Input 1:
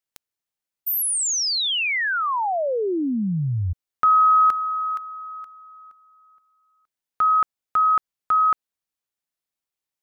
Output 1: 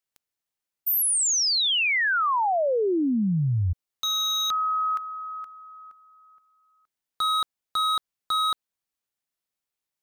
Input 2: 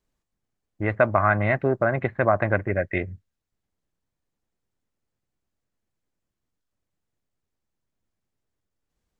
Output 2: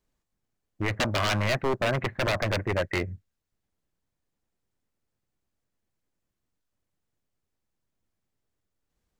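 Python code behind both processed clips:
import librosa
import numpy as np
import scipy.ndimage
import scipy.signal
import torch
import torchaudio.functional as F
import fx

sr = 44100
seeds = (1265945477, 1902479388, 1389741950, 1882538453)

y = 10.0 ** (-19.0 / 20.0) * (np.abs((x / 10.0 ** (-19.0 / 20.0) + 3.0) % 4.0 - 2.0) - 1.0)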